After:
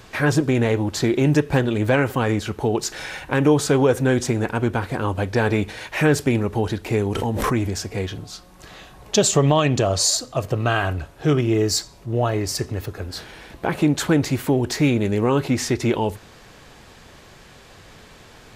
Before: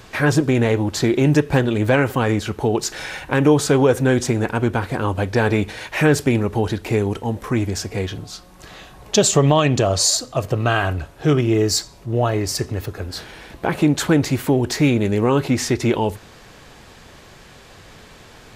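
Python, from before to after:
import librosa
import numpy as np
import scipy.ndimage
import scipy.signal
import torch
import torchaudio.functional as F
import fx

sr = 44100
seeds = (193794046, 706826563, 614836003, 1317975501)

y = fx.pre_swell(x, sr, db_per_s=24.0, at=(6.99, 7.76))
y = y * 10.0 ** (-2.0 / 20.0)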